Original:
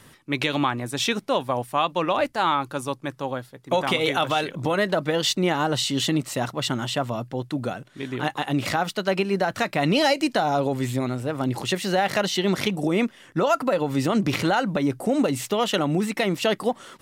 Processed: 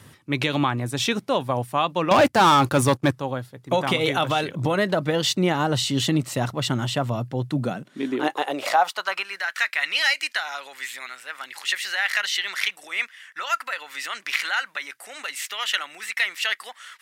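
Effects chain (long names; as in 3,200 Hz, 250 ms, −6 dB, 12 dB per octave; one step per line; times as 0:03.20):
0:02.11–0:03.11: leveller curve on the samples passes 3
high-pass filter sweep 94 Hz → 1,800 Hz, 0:07.35–0:09.41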